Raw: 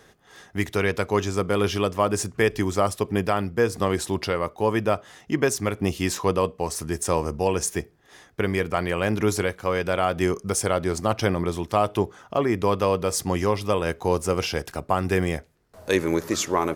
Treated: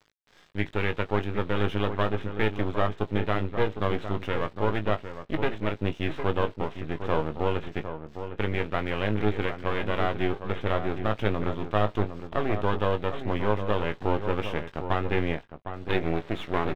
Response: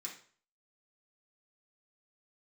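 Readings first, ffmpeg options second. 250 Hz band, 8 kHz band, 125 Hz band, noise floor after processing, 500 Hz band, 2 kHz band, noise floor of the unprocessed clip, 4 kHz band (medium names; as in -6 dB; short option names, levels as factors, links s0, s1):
-4.5 dB, under -30 dB, -2.0 dB, -53 dBFS, -5.0 dB, -3.0 dB, -56 dBFS, -5.5 dB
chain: -filter_complex "[0:a]aeval=exprs='if(lt(val(0),0),0.251*val(0),val(0))':c=same,aresample=8000,acrusher=bits=5:dc=4:mix=0:aa=0.000001,aresample=44100,aeval=exprs='sgn(val(0))*max(abs(val(0))-0.00398,0)':c=same,asplit=2[s0][s1];[s1]adelay=19,volume=0.355[s2];[s0][s2]amix=inputs=2:normalize=0,asplit=2[s3][s4];[s4]adelay=758,volume=0.355,highshelf=f=4000:g=-17.1[s5];[s3][s5]amix=inputs=2:normalize=0,volume=0.794"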